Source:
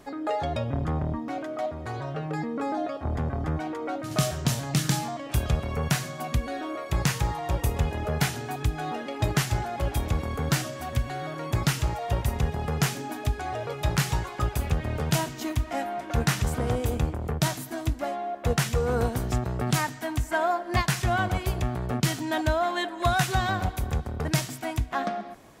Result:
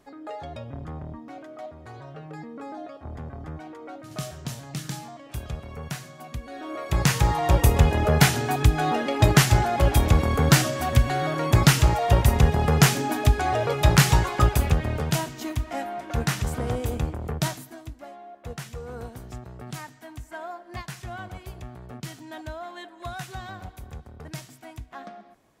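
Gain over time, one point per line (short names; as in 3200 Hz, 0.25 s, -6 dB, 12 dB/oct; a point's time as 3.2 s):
6.44 s -8.5 dB
6.79 s +1 dB
7.44 s +8 dB
14.42 s +8 dB
15.22 s -1 dB
17.46 s -1 dB
17.86 s -12 dB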